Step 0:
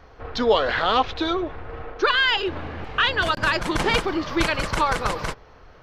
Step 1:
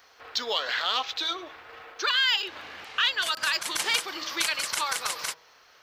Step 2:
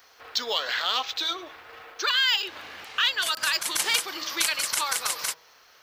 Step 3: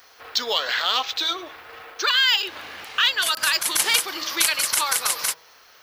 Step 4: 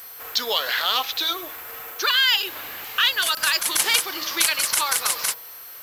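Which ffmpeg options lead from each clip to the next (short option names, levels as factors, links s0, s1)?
-filter_complex "[0:a]aderivative,bandreject=f=161.1:t=h:w=4,bandreject=f=322.2:t=h:w=4,bandreject=f=483.3:t=h:w=4,bandreject=f=644.4:t=h:w=4,bandreject=f=805.5:t=h:w=4,bandreject=f=966.6:t=h:w=4,bandreject=f=1127.7:t=h:w=4,bandreject=f=1288.8:t=h:w=4,asplit=2[s0][s1];[s1]acompressor=threshold=0.0112:ratio=6,volume=0.891[s2];[s0][s2]amix=inputs=2:normalize=0,volume=1.68"
-af "highshelf=f=8100:g=9.5"
-af "aexciter=amount=1.3:drive=6.8:freq=10000,volume=1.58"
-af "aeval=exprs='val(0)+0.0158*sin(2*PI*12000*n/s)':c=same,acrusher=bits=5:mix=0:aa=0.5"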